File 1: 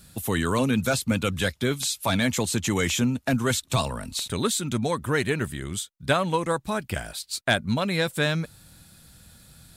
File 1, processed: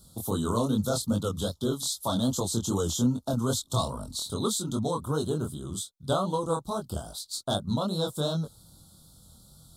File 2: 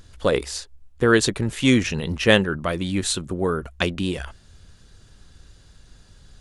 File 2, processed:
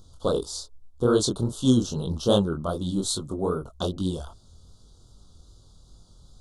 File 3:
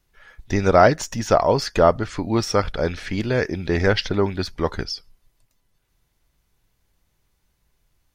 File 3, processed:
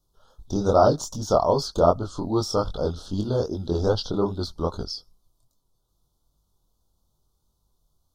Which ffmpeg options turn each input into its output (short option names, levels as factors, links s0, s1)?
-af "flanger=delay=19.5:depth=6.7:speed=2.5,asuperstop=centerf=2100:order=8:qfactor=1"